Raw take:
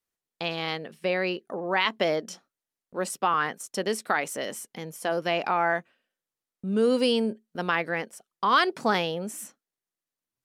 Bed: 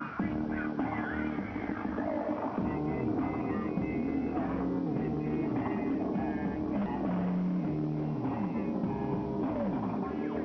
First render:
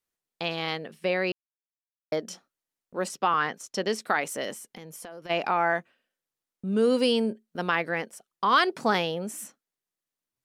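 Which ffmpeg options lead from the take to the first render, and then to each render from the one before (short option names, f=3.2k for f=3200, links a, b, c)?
-filter_complex "[0:a]asettb=1/sr,asplit=3[a][b][c];[a]atrim=end=3.084[d];[b]atrim=start=3.08:end=4.01,asetpts=PTS-STARTPTS,afade=t=in:d=0.004:c=qsin,afade=t=out:st=0.926:d=0.004:c=qsin,highshelf=f=7.5k:t=q:w=1.5:g=-6.5[e];[c]atrim=start=4.006[f];[d][e]acrossfade=d=0.004:c1=hsin:c2=qsin[g];[g][f]acrossfade=d=0.004:c1=qsin:c2=hsin,asplit=3[h][i][j];[h]afade=t=out:st=4.53:d=0.02[k];[i]acompressor=threshold=-38dB:ratio=12:attack=3.2:release=140:knee=1:detection=peak,afade=t=in:st=4.53:d=0.02,afade=t=out:st=5.29:d=0.02[l];[j]afade=t=in:st=5.29:d=0.02[m];[k][l][m]amix=inputs=3:normalize=0,asplit=3[n][o][p];[n]atrim=end=1.32,asetpts=PTS-STARTPTS,afade=t=out:st=1.316:d=0.004:c=hsin[q];[o]atrim=start=1.32:end=2.12,asetpts=PTS-STARTPTS,volume=0[r];[p]atrim=start=2.12,asetpts=PTS-STARTPTS,afade=t=in:d=0.004:c=hsin[s];[q][r][s]concat=n=3:v=0:a=1"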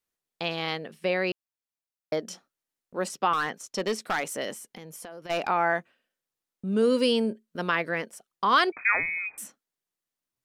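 -filter_complex "[0:a]asettb=1/sr,asplit=3[a][b][c];[a]atrim=end=3.334[d];[b]atrim=start=3.33:end=5.48,asetpts=PTS-STARTPTS,afade=t=in:d=0.004:c=qsin,afade=t=out:st=2.146:d=0.004:c=qsin,asoftclip=type=hard:threshold=-21.5dB[e];[c]atrim=start=5.476[f];[d][e]acrossfade=d=0.004:c1=hsin:c2=qsin[g];[g][f]acrossfade=d=0.004:c1=qsin:c2=hsin,asettb=1/sr,asplit=3[h][i][j];[h]atrim=end=6.824[k];[i]atrim=start=6.82:end=8.1,asetpts=PTS-STARTPTS,afade=t=in:d=0.004:c=qsin,afade=t=out:st=1.276:d=0.004:c=qsin,asuperstop=centerf=780:order=4:qfactor=5.6[l];[j]atrim=start=8.096[m];[k][l]acrossfade=d=0.004:c1=hsin:c2=qsin[n];[n][m]acrossfade=d=0.004:c1=qsin:c2=hsin,asettb=1/sr,asplit=3[o][p][q];[o]atrim=end=8.724[r];[p]atrim=start=8.72:end=9.38,asetpts=PTS-STARTPTS,afade=t=in:d=0.004:c=qsin,afade=t=out:st=0.656:d=0.004:c=qsin,lowpass=f=2.3k:t=q:w=0.5098,lowpass=f=2.3k:t=q:w=0.6013,lowpass=f=2.3k:t=q:w=0.9,lowpass=f=2.3k:t=q:w=2.563,afreqshift=-2700[s];[q]atrim=start=9.376[t];[r][s]acrossfade=d=0.004:c1=hsin:c2=qsin[u];[u][t]acrossfade=d=0.004:c1=qsin:c2=hsin"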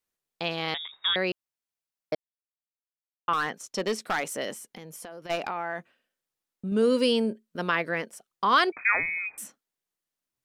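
-filter_complex "[0:a]asettb=1/sr,asplit=3[a][b][c];[a]atrim=end=0.744[d];[b]atrim=start=0.74:end=1.16,asetpts=PTS-STARTPTS,afade=t=in:d=0.004:c=qsin,afade=t=out:st=0.416:d=0.004:c=qsin,lowpass=f=3.3k:t=q:w=0.5098,lowpass=f=3.3k:t=q:w=0.6013,lowpass=f=3.3k:t=q:w=0.9,lowpass=f=3.3k:t=q:w=2.563,afreqshift=-3900[e];[c]atrim=start=1.156[f];[d][e]acrossfade=d=0.004:c1=hsin:c2=qsin[g];[g][f]acrossfade=d=0.004:c1=qsin:c2=hsin,asettb=1/sr,asplit=3[h][i][j];[h]atrim=end=5.354[k];[i]atrim=start=5.35:end=6.72,asetpts=PTS-STARTPTS,afade=t=in:d=0.004:c=qsin,afade=t=out:st=1.366:d=0.004:c=qsin,acompressor=threshold=-27dB:ratio=6:attack=3.2:release=140:knee=1:detection=peak[l];[j]atrim=start=6.716[m];[k][l]acrossfade=d=0.004:c1=hsin:c2=qsin[n];[n][m]acrossfade=d=0.004:c1=qsin:c2=hsin,asplit=3[o][p][q];[o]atrim=end=2.15,asetpts=PTS-STARTPTS,afade=t=out:st=2.146:d=0.004:c=hsin[r];[p]atrim=start=2.15:end=3.28,asetpts=PTS-STARTPTS,volume=0[s];[q]atrim=start=3.28,asetpts=PTS-STARTPTS,afade=t=in:d=0.004:c=hsin[t];[r][s][t]concat=n=3:v=0:a=1"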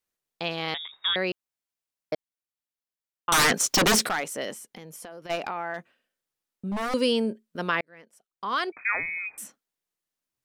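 -filter_complex "[0:a]asettb=1/sr,asplit=3[a][b][c];[a]atrim=end=3.324[d];[b]atrim=start=3.32:end=4.09,asetpts=PTS-STARTPTS,afade=t=in:d=0.004:c=qsin,afade=t=out:st=0.766:d=0.004:c=qsin,aeval=exprs='0.15*sin(PI/2*6.31*val(0)/0.15)':c=same[e];[c]atrim=start=4.086[f];[d][e]acrossfade=d=0.004:c1=hsin:c2=qsin[g];[g][f]acrossfade=d=0.004:c1=qsin:c2=hsin,asettb=1/sr,asplit=3[h][i][j];[h]atrim=end=5.744[k];[i]atrim=start=5.74:end=6.94,asetpts=PTS-STARTPTS,afade=t=in:d=0.004:c=qsin,afade=t=out:st=1.196:d=0.004:c=qsin,aeval=exprs='0.0596*(abs(mod(val(0)/0.0596+3,4)-2)-1)':c=same[l];[j]atrim=start=6.936[m];[k][l]acrossfade=d=0.004:c1=hsin:c2=qsin[n];[n][m]acrossfade=d=0.004:c1=qsin:c2=hsin,asplit=2[o][p];[o]atrim=end=7.81,asetpts=PTS-STARTPTS,afade=t=out:st=7.806:d=0.004:c=hsin[q];[p]atrim=start=7.81,asetpts=PTS-STARTPTS,afade=t=in:d=1.58[r];[q][r]concat=n=2:v=0:a=1"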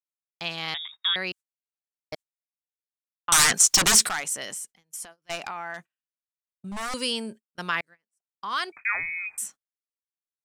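-af "equalizer=f=250:t=o:w=1:g=-7,equalizer=f=500:t=o:w=1:g=-9,equalizer=f=8k:t=o:w=1:g=10,agate=range=-27dB:threshold=-43dB:ratio=16:detection=peak"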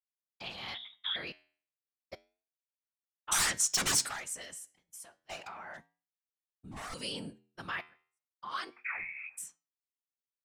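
-af "afftfilt=real='hypot(re,im)*cos(2*PI*random(0))':imag='hypot(re,im)*sin(2*PI*random(1))':win_size=512:overlap=0.75,flanger=delay=8.6:depth=3.5:regen=-84:speed=0.32:shape=sinusoidal"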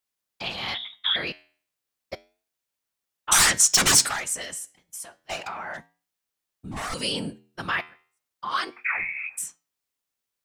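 -af "volume=11dB"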